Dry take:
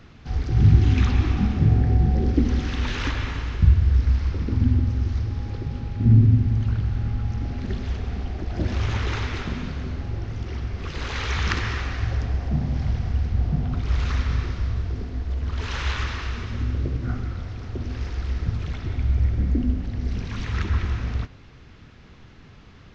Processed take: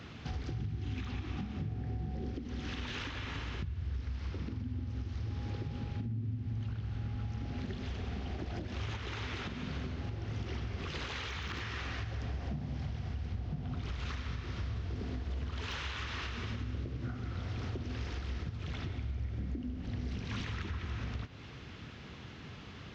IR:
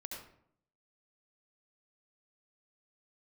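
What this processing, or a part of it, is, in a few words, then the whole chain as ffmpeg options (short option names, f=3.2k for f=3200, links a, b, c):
broadcast voice chain: -af "highpass=77,deesser=0.85,acompressor=threshold=-35dB:ratio=5,equalizer=f=3.1k:t=o:w=0.7:g=4,alimiter=level_in=6dB:limit=-24dB:level=0:latency=1:release=284,volume=-6dB,volume=1dB"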